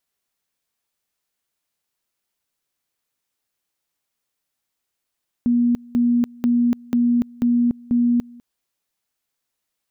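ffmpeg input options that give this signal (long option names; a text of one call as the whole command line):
ffmpeg -f lavfi -i "aevalsrc='pow(10,(-14-25*gte(mod(t,0.49),0.29))/20)*sin(2*PI*240*t)':duration=2.94:sample_rate=44100" out.wav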